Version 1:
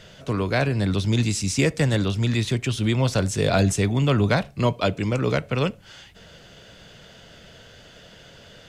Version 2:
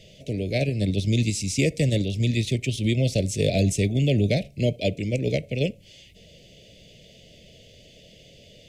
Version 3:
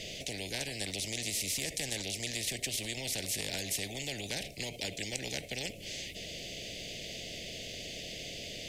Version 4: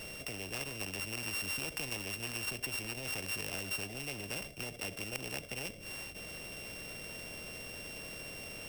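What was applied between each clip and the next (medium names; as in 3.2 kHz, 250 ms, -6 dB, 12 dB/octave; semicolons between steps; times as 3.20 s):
elliptic band-stop 620–2200 Hz, stop band 70 dB; in parallel at +0.5 dB: level held to a coarse grid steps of 11 dB; on the sum: trim -5.5 dB
peak limiter -18 dBFS, peak gain reduction 8.5 dB; spectrum-flattening compressor 4:1; trim +3 dB
sorted samples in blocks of 16 samples; trim -2.5 dB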